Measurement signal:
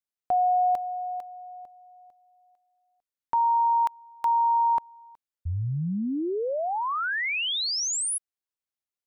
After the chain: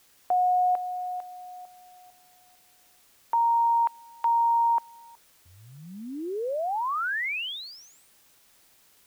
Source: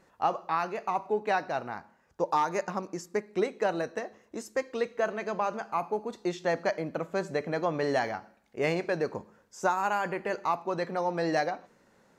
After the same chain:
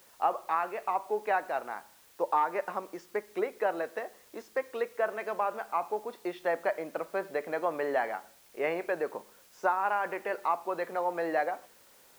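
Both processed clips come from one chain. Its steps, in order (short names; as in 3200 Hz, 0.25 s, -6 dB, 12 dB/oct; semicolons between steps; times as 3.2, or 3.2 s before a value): treble ducked by the level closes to 2500 Hz, closed at -24.5 dBFS; BPF 410–3200 Hz; requantised 10-bit, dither triangular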